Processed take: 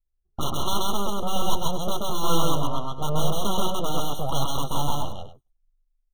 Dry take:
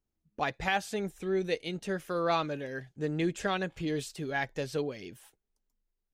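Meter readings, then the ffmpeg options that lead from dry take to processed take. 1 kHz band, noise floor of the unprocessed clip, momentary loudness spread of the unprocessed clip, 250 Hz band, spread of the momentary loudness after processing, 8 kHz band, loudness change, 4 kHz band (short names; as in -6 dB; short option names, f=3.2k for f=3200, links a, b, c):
+8.0 dB, -84 dBFS, 8 LU, +3.5 dB, 6 LU, +14.0 dB, +5.0 dB, +11.0 dB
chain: -filter_complex "[0:a]bandreject=f=740:w=12,anlmdn=0.00631,highshelf=f=2.4k:g=-7,acrossover=split=140[a][b];[a]acompressor=threshold=-56dB:ratio=6[c];[b]aeval=exprs='abs(val(0))':c=same[d];[c][d]amix=inputs=2:normalize=0,asplit=2[e][f];[f]adelay=14,volume=-12dB[g];[e][g]amix=inputs=2:normalize=0,asplit=2[h][i];[i]aeval=exprs='(mod(23.7*val(0)+1,2)-1)/23.7':c=same,volume=-5dB[j];[h][j]amix=inputs=2:normalize=0,aecho=1:1:131.2|230.3:0.891|0.251,afftfilt=real='re*eq(mod(floor(b*sr/1024/1400),2),0)':imag='im*eq(mod(floor(b*sr/1024/1400),2),0)':win_size=1024:overlap=0.75,volume=8.5dB"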